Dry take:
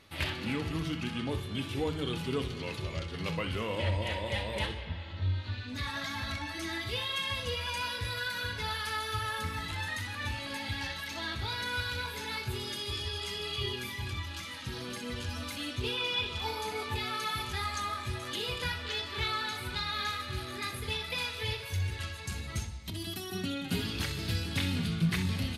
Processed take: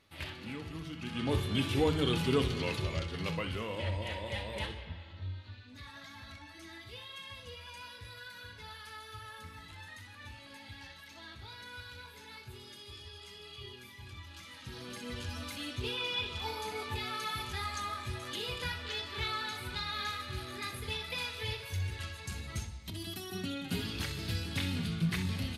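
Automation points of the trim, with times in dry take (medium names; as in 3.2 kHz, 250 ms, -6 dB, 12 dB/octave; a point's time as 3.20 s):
0.95 s -8.5 dB
1.35 s +4 dB
2.60 s +4 dB
3.74 s -4.5 dB
4.79 s -4.5 dB
5.65 s -13 dB
13.92 s -13 dB
15.13 s -3 dB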